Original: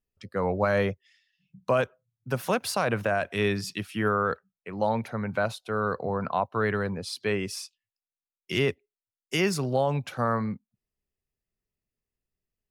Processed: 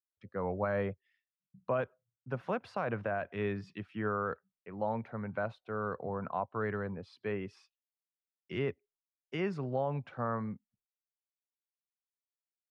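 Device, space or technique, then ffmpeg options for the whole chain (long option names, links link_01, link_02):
hearing-loss simulation: -af "lowpass=1900,agate=range=-33dB:threshold=-60dB:ratio=3:detection=peak,volume=-8dB"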